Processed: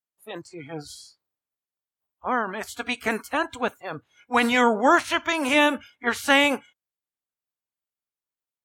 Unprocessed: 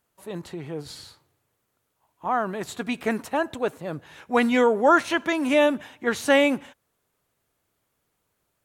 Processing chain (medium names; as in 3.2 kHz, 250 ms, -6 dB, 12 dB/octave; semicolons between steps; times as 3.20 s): spectral peaks clipped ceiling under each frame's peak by 13 dB; spectral noise reduction 23 dB